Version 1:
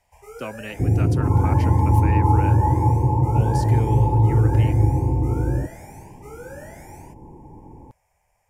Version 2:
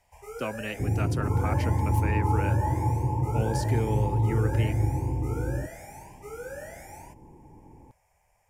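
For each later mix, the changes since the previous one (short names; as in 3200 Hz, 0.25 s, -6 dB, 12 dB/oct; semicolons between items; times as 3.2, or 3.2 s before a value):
second sound -8.0 dB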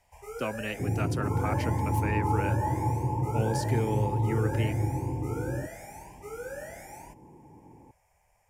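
second sound: add HPF 110 Hz 12 dB/oct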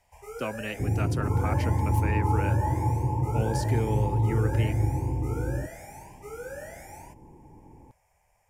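second sound: remove HPF 110 Hz 12 dB/oct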